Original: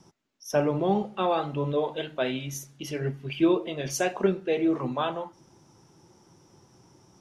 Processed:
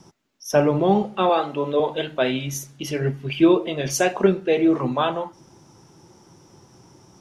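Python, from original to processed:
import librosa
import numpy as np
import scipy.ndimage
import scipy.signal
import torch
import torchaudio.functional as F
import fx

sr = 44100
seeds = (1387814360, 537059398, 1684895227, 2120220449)

y = fx.highpass(x, sr, hz=270.0, slope=12, at=(1.29, 1.8))
y = F.gain(torch.from_numpy(y), 6.5).numpy()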